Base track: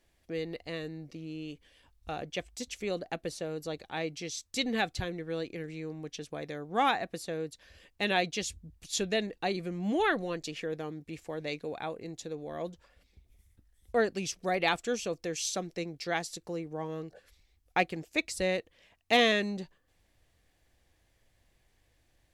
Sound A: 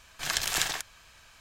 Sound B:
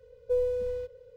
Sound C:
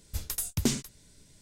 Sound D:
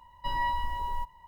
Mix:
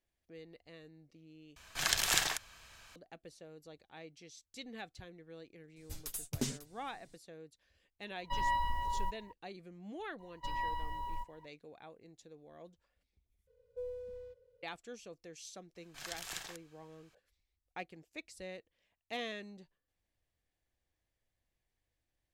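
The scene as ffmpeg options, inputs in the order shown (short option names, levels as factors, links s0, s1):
-filter_complex "[1:a]asplit=2[s0][s1];[4:a]asplit=2[s2][s3];[0:a]volume=0.15[s4];[3:a]aecho=1:1:7.3:0.65[s5];[s2]dynaudnorm=f=140:g=3:m=5.01[s6];[s4]asplit=3[s7][s8][s9];[s7]atrim=end=1.564[s10];[s0]atrim=end=1.4,asetpts=PTS-STARTPTS,volume=0.794[s11];[s8]atrim=start=2.956:end=13.474[s12];[2:a]atrim=end=1.16,asetpts=PTS-STARTPTS,volume=0.168[s13];[s9]atrim=start=14.626[s14];[s5]atrim=end=1.41,asetpts=PTS-STARTPTS,volume=0.299,afade=t=in:d=0.004:c=hsin,afade=t=out:st=1.406:d=0.004:c=hsin,adelay=5760[s15];[s6]atrim=end=1.27,asetpts=PTS-STARTPTS,volume=0.141,afade=t=in:d=0.004:c=hsin,afade=t=out:st=1.266:d=0.004:c=hsin,adelay=8060[s16];[s3]atrim=end=1.27,asetpts=PTS-STARTPTS,volume=0.398,afade=t=in:d=0.004:c=hsin,afade=t=out:st=1.266:d=0.004:c=hsin,adelay=10190[s17];[s1]atrim=end=1.4,asetpts=PTS-STARTPTS,volume=0.168,afade=t=in:d=0.004:c=hsin,afade=t=out:st=1.396:d=0.004:c=hsin,adelay=15750[s18];[s10][s11]acrossfade=d=0.004:c1=hsin:c2=hsin[s19];[s19][s12]acrossfade=d=0.004:c1=hsin:c2=hsin[s20];[s20][s13]acrossfade=d=0.004:c1=hsin:c2=hsin[s21];[s21][s14]acrossfade=d=0.004:c1=hsin:c2=hsin[s22];[s22][s15][s16][s17][s18]amix=inputs=5:normalize=0"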